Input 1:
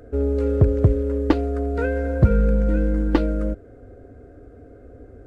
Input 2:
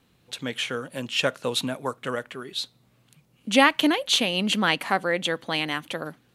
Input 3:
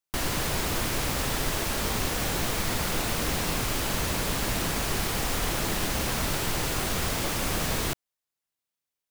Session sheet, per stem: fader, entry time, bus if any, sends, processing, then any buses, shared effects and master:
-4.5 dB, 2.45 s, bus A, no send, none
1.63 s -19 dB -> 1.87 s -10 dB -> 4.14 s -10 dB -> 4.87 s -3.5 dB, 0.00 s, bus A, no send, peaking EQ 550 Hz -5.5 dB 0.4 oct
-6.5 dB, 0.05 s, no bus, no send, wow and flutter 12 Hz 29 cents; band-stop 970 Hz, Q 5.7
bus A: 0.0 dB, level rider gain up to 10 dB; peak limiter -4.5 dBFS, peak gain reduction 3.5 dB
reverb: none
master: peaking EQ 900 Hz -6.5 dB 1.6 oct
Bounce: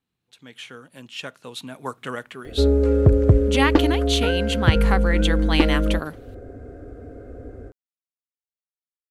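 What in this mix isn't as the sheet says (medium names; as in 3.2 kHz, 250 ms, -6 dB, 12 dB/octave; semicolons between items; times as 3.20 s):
stem 3: muted; master: missing peaking EQ 900 Hz -6.5 dB 1.6 oct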